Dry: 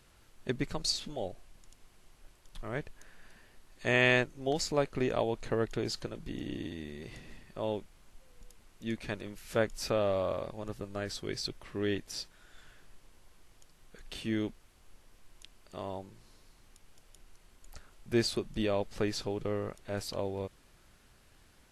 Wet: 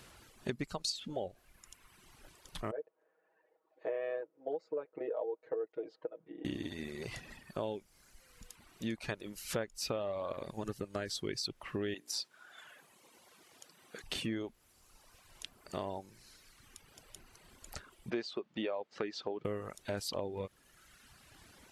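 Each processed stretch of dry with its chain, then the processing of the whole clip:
0:02.71–0:06.45: four-pole ladder band-pass 550 Hz, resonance 55% + comb filter 6.3 ms, depth 97%
0:11.94–0:14.04: high-pass filter 210 Hz + mains-hum notches 60/120/180/240/300/360/420 Hz
0:18.10–0:19.45: high-pass filter 300 Hz + high-frequency loss of the air 180 metres
whole clip: high-pass filter 95 Hz 6 dB per octave; reverb reduction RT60 1.3 s; downward compressor 5 to 1, threshold −43 dBFS; level +8 dB

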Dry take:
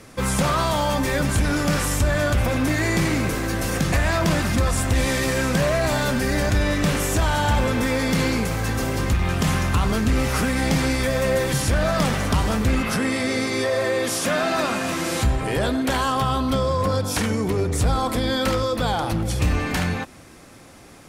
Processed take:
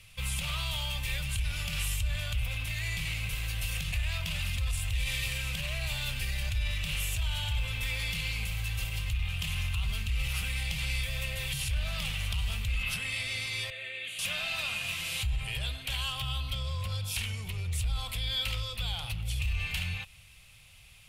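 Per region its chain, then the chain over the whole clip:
0:13.70–0:14.19: high-pass filter 260 Hz + high-frequency loss of the air 71 metres + phaser with its sweep stopped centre 2,300 Hz, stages 4
whole clip: drawn EQ curve 130 Hz 0 dB, 250 Hz −10 dB, 1,700 Hz −16 dB, 2,700 Hz +2 dB, 5,700 Hz −15 dB, 13,000 Hz −8 dB; brickwall limiter −20 dBFS; guitar amp tone stack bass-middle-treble 10-0-10; level +4 dB

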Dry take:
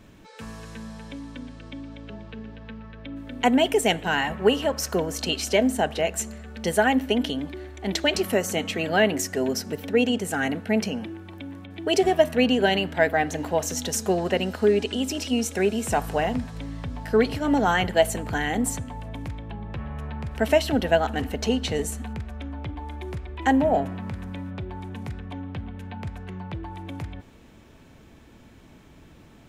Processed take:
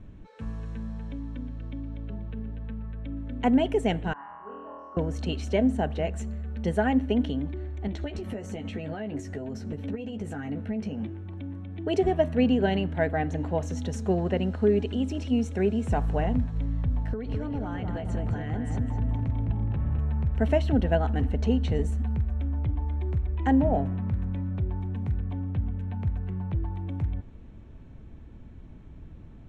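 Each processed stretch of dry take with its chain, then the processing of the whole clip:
0:04.13–0:04.97: resonant band-pass 1,100 Hz, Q 12 + spectral tilt −2.5 dB per octave + flutter between parallel walls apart 4.2 metres, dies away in 1.4 s
0:07.87–0:11.25: downward compressor 10 to 1, threshold −28 dBFS + double-tracking delay 14 ms −6 dB
0:17.13–0:19.99: low-pass filter 7,900 Hz + downward compressor 8 to 1, threshold −28 dBFS + feedback echo with a low-pass in the loop 209 ms, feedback 54%, low-pass 3,000 Hz, level −4 dB
whole clip: low-pass filter 11,000 Hz 24 dB per octave; RIAA equalisation playback; notch filter 4,900 Hz, Q 10; level −7 dB

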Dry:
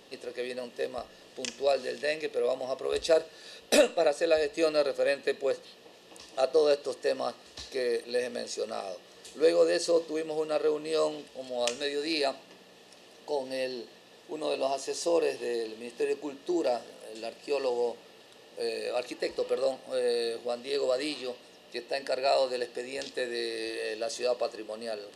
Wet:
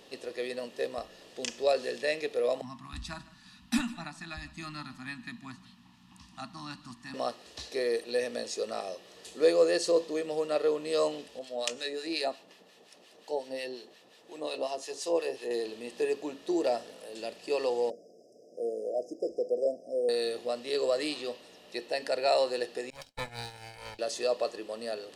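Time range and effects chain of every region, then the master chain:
0:02.61–0:07.14: Chebyshev band-stop filter 240–950 Hz, order 3 + tilt shelving filter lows +9.5 dB, about 900 Hz + single-tap delay 152 ms −19 dB
0:11.39–0:15.51: high-pass filter 170 Hz 6 dB per octave + two-band tremolo in antiphase 5.6 Hz, crossover 1,100 Hz
0:17.90–0:20.09: linear-phase brick-wall band-stop 740–4,900 Hz + three-way crossover with the lows and the highs turned down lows −18 dB, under 160 Hz, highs −16 dB, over 5,100 Hz
0:22.90–0:23.99: lower of the sound and its delayed copy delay 1.3 ms + downward expander −32 dBFS
whole clip: no processing

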